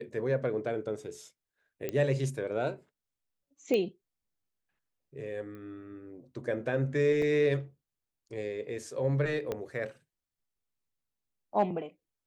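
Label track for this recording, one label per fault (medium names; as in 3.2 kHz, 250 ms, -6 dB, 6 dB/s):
1.890000	1.890000	pop -19 dBFS
3.740000	3.740000	pop -18 dBFS
5.550000	5.550000	pop -36 dBFS
7.220000	7.220000	dropout 2.7 ms
9.520000	9.520000	pop -20 dBFS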